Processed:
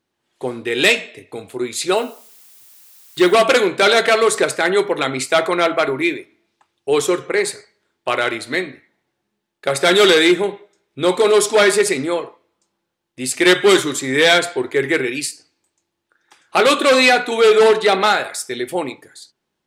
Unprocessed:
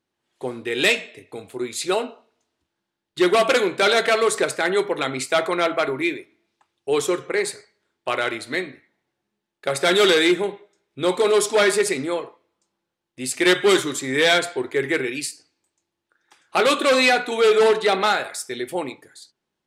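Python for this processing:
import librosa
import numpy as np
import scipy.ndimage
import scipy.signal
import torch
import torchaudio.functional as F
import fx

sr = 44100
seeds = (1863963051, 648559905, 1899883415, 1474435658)

y = fx.dmg_noise_colour(x, sr, seeds[0], colour='blue', level_db=-51.0, at=(1.95, 3.32), fade=0.02)
y = F.gain(torch.from_numpy(y), 4.5).numpy()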